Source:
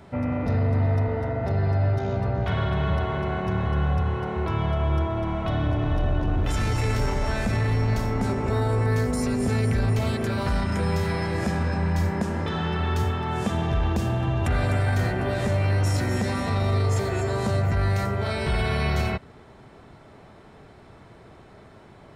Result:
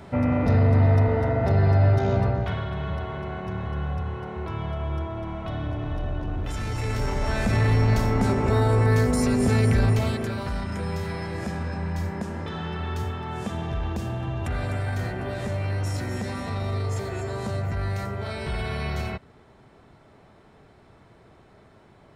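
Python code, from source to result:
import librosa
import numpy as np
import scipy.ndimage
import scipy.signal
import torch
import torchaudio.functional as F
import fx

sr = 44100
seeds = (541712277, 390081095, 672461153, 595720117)

y = fx.gain(x, sr, db=fx.line((2.21, 4.0), (2.64, -5.5), (6.63, -5.5), (7.64, 3.0), (9.84, 3.0), (10.46, -5.0)))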